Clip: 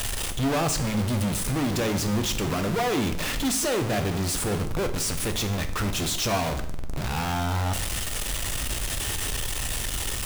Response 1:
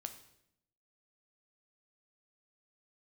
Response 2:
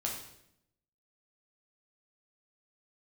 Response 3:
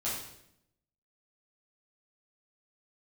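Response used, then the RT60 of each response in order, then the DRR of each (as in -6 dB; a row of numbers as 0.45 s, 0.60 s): 1; 0.75 s, 0.75 s, 0.75 s; 7.0 dB, -2.0 dB, -9.0 dB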